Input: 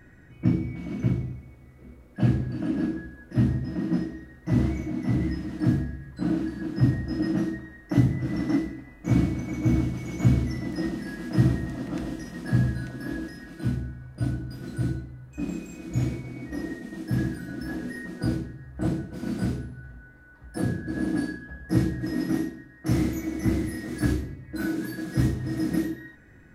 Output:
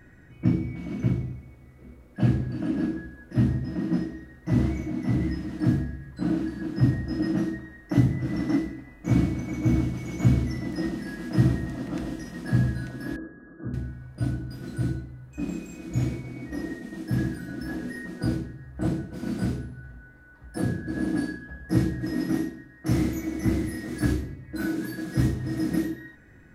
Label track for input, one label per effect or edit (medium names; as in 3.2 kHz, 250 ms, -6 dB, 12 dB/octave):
13.160000	13.740000	rippled Chebyshev low-pass 1.7 kHz, ripple 9 dB